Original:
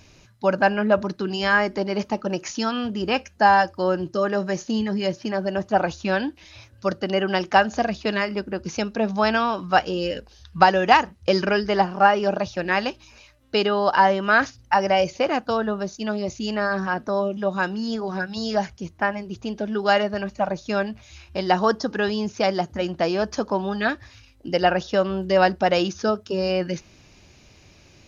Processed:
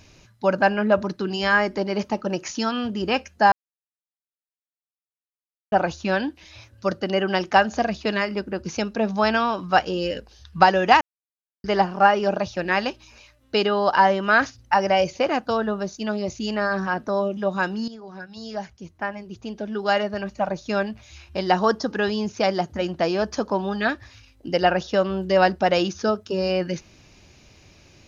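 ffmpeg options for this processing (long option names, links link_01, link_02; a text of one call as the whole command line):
ffmpeg -i in.wav -filter_complex "[0:a]asplit=6[link_01][link_02][link_03][link_04][link_05][link_06];[link_01]atrim=end=3.52,asetpts=PTS-STARTPTS,afade=type=out:start_time=3.516:duration=0.004:curve=hsin[link_07];[link_02]atrim=start=3.52:end=5.72,asetpts=PTS-STARTPTS,volume=0[link_08];[link_03]atrim=start=5.72:end=11.01,asetpts=PTS-STARTPTS,afade=type=in:duration=0.004:curve=hsin,afade=type=out:start_time=5.286:duration=0.004:curve=hsin[link_09];[link_04]atrim=start=11.01:end=11.64,asetpts=PTS-STARTPTS,volume=0[link_10];[link_05]atrim=start=11.64:end=17.88,asetpts=PTS-STARTPTS,afade=type=in:duration=0.004:curve=hsin,afade=type=out:start_time=6.236:duration=0.004:curve=hsin:silence=0.199526[link_11];[link_06]atrim=start=17.88,asetpts=PTS-STARTPTS,afade=type=in:duration=2.88:silence=0.199526[link_12];[link_07][link_08][link_09][link_10][link_11][link_12]concat=n=6:v=0:a=1" out.wav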